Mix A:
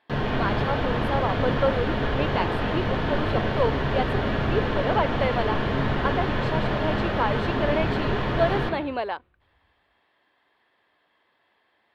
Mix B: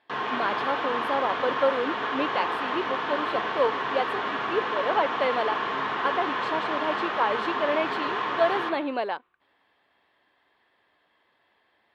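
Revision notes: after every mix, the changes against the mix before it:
background: add loudspeaker in its box 490–8,300 Hz, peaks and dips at 580 Hz −9 dB, 1,100 Hz +8 dB, 4,500 Hz −4 dB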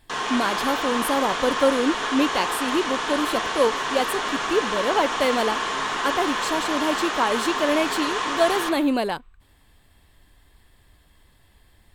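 speech: remove high-pass filter 500 Hz 12 dB per octave
master: remove high-frequency loss of the air 350 metres

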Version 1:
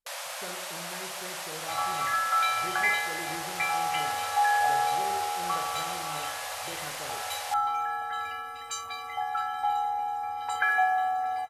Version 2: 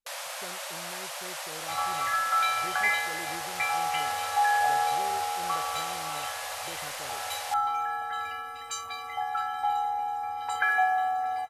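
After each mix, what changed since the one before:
reverb: off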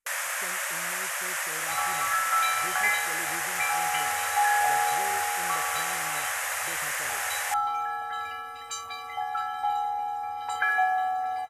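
first sound: add drawn EQ curve 780 Hz 0 dB, 1,800 Hz +13 dB, 4,200 Hz −4 dB, 6,800 Hz +8 dB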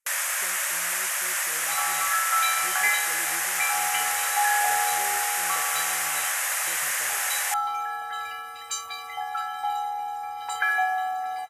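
master: add spectral tilt +2 dB per octave

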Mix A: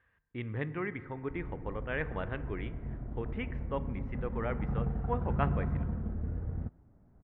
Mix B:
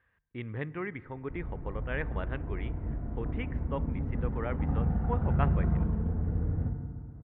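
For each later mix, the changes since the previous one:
speech: send −6.0 dB
background: send on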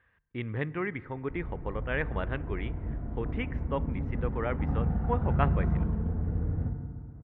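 speech +3.5 dB
master: remove high-frequency loss of the air 67 metres

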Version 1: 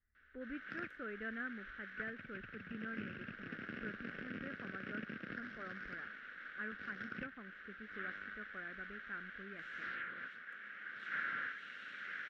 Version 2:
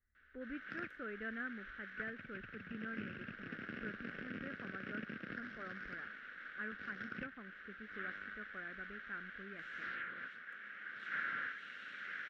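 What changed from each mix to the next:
nothing changed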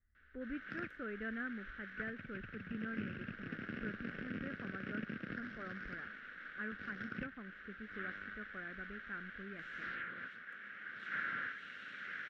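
master: add low-shelf EQ 240 Hz +7 dB

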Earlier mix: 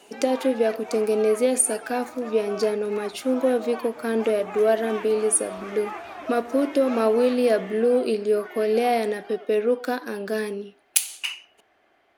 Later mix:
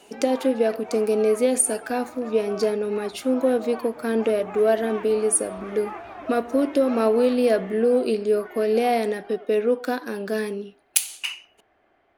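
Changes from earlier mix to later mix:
background: add high-shelf EQ 3,100 Hz −11.5 dB
master: add low-shelf EQ 110 Hz +9 dB

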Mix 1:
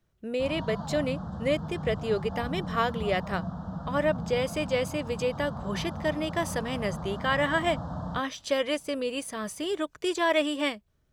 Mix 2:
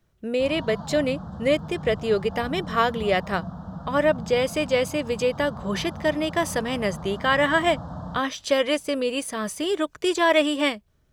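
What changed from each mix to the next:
speech +5.5 dB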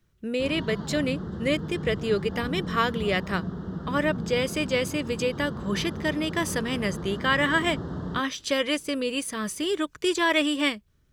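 background: remove phaser with its sweep stopped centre 940 Hz, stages 4
master: add parametric band 690 Hz −9 dB 0.89 octaves

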